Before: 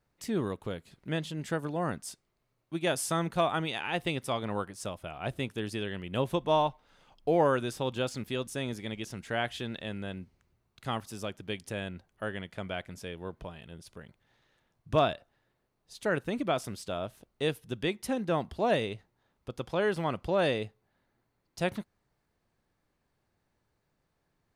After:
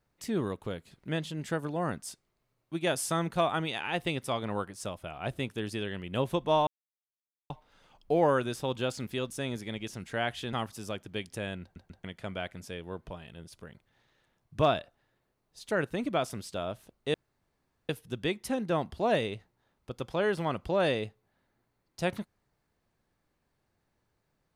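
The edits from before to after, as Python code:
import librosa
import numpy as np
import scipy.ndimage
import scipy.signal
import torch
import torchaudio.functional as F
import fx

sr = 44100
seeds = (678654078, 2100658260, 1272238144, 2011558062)

y = fx.edit(x, sr, fx.insert_silence(at_s=6.67, length_s=0.83),
    fx.cut(start_s=9.7, length_s=1.17),
    fx.stutter_over(start_s=11.96, slice_s=0.14, count=3),
    fx.insert_room_tone(at_s=17.48, length_s=0.75), tone=tone)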